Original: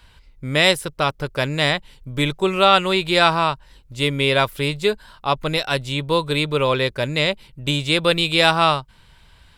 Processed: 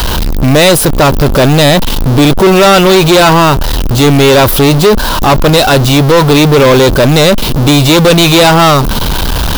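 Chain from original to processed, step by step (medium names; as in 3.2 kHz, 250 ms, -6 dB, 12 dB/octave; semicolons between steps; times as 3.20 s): jump at every zero crossing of -24 dBFS; graphic EQ 125/250/2000/8000 Hz -3/+3/-8/-7 dB; waveshaping leveller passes 5; trim +1.5 dB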